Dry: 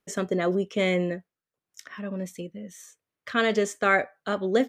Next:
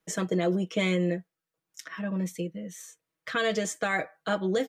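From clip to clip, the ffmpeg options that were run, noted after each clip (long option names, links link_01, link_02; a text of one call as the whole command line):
ffmpeg -i in.wav -filter_complex "[0:a]aecho=1:1:6.2:0.78,acrossover=split=110|3900[link_01][link_02][link_03];[link_02]alimiter=limit=-18dB:level=0:latency=1:release=205[link_04];[link_01][link_04][link_03]amix=inputs=3:normalize=0" out.wav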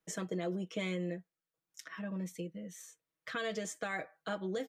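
ffmpeg -i in.wav -af "acompressor=threshold=-33dB:ratio=1.5,volume=-6.5dB" out.wav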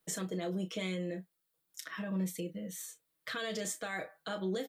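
ffmpeg -i in.wav -filter_complex "[0:a]alimiter=level_in=8.5dB:limit=-24dB:level=0:latency=1:release=50,volume=-8.5dB,aexciter=amount=1.7:drive=4.1:freq=3400,asplit=2[link_01][link_02];[link_02]adelay=32,volume=-10dB[link_03];[link_01][link_03]amix=inputs=2:normalize=0,volume=3.5dB" out.wav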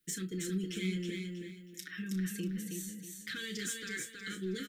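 ffmpeg -i in.wav -filter_complex "[0:a]volume=30.5dB,asoftclip=hard,volume=-30.5dB,asuperstop=centerf=770:order=8:qfactor=0.71,asplit=2[link_01][link_02];[link_02]aecho=0:1:320|640|960|1280:0.631|0.196|0.0606|0.0188[link_03];[link_01][link_03]amix=inputs=2:normalize=0" out.wav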